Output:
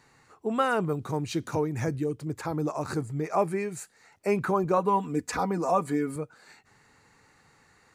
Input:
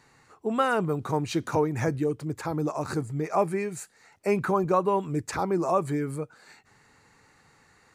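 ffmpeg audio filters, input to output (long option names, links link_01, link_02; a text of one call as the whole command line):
ffmpeg -i in.wav -filter_complex "[0:a]asettb=1/sr,asplit=3[link_01][link_02][link_03];[link_01]atrim=end=0.934[link_04];[link_02]atrim=start=0.93:end=2.27,asetpts=PTS-STARTPTS,afade=type=in:duration=0.004:curve=qsin,afade=type=out:start_time=1.336:duration=0.004:curve=qsin,equalizer=frequency=1000:width_type=o:width=2.4:gain=-4.5[link_05];[link_03]atrim=start=2.266[link_06];[link_04][link_05]acrossfade=duration=0.004:curve1=hsin:curve2=qsin[link_07];[link_07][link_06]acrossfade=duration=0.004:curve1=qsin:curve2=hsin,asettb=1/sr,asplit=3[link_08][link_09][link_10];[link_08]atrim=end=4.774[link_11];[link_09]atrim=start=4.77:end=6.16,asetpts=PTS-STARTPTS,afade=type=in:duration=0.004:curve=qsin,afade=type=out:start_time=1.386:duration=0.004:curve=qsin,aecho=1:1:4.1:0.68,atrim=end_sample=61299[link_12];[link_10]atrim=start=6.156[link_13];[link_11][link_12]acrossfade=duration=0.004:curve1=hsin:curve2=qsin[link_14];[link_14][link_13]acrossfade=duration=0.004:curve1=qsin:curve2=hsin,volume=-1dB" out.wav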